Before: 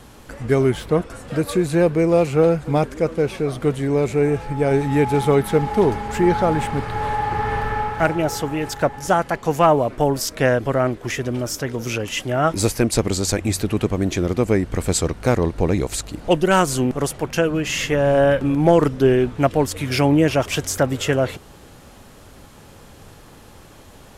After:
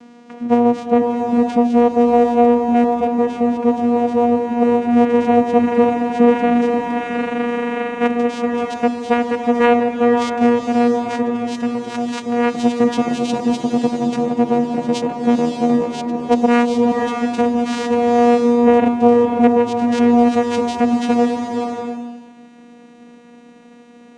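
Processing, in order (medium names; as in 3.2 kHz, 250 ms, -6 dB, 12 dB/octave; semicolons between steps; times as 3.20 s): vocoder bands 4, saw 239 Hz; swelling reverb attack 600 ms, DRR 3 dB; trim +3.5 dB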